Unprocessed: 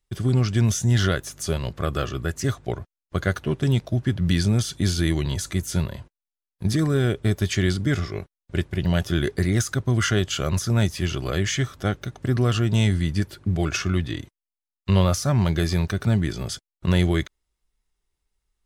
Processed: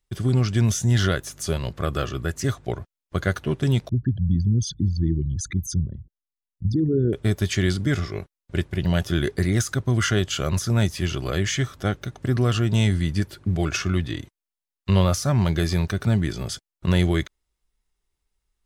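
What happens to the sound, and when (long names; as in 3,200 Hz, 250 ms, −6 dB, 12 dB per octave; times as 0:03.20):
0:03.89–0:07.13: spectral envelope exaggerated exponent 3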